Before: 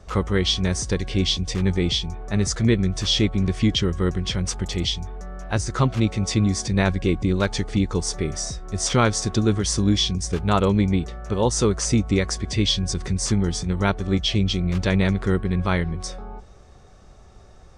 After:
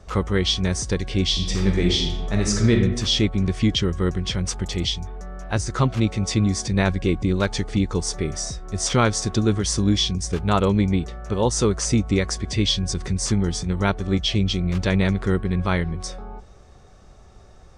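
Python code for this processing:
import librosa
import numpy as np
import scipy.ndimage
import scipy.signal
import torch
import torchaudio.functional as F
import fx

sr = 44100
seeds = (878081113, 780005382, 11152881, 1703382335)

y = fx.reverb_throw(x, sr, start_s=1.3, length_s=1.42, rt60_s=0.92, drr_db=1.0)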